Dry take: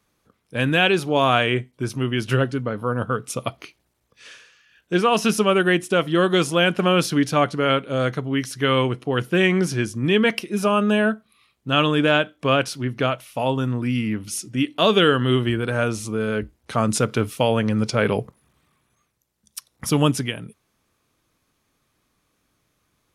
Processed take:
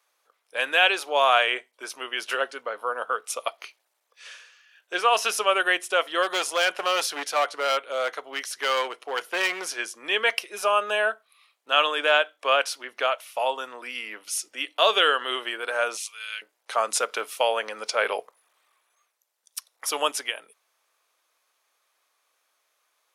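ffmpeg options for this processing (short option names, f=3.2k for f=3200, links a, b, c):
-filter_complex "[0:a]asplit=3[a][b][c];[a]afade=t=out:st=6.22:d=0.02[d];[b]volume=15.5dB,asoftclip=hard,volume=-15.5dB,afade=t=in:st=6.22:d=0.02,afade=t=out:st=9.71:d=0.02[e];[c]afade=t=in:st=9.71:d=0.02[f];[d][e][f]amix=inputs=3:normalize=0,asettb=1/sr,asplit=3[g][h][i];[g]atrim=end=15.974[j];[h]atrim=start=15.97:end=16.42,asetpts=PTS-STARTPTS,afade=t=in:d=0.004:c=qsin,afade=t=out:st=0.446:d=0.004:c=qsin,highpass=f=2.7k:t=q:w=1.9[k];[i]atrim=start=16.416[l];[j][k]acrossfade=d=0.004:c1=hsin:c2=qsin[m];[m][l]acrossfade=d=0.004:c1=qsin:c2=hsin,highpass=f=560:w=0.5412,highpass=f=560:w=1.3066"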